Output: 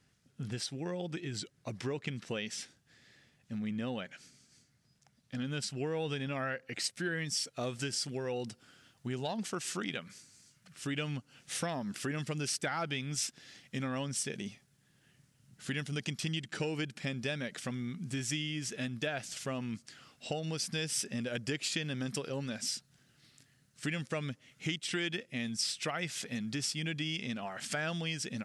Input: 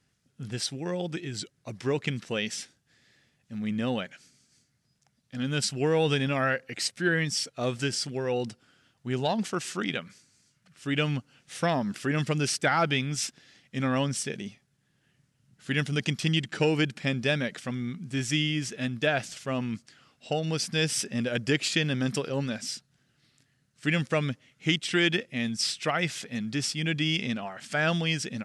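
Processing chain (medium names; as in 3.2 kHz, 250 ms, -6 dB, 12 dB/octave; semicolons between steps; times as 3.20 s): compression 3:1, threshold -38 dBFS, peak gain reduction 13.5 dB; treble shelf 5.9 kHz -2 dB, from 6.84 s +6 dB; trim +1.5 dB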